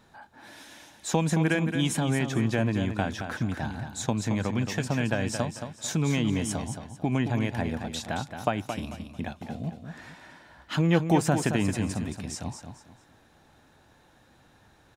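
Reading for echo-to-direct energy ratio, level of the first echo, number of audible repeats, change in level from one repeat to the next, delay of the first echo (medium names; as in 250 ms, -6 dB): -7.5 dB, -8.0 dB, 3, -10.5 dB, 222 ms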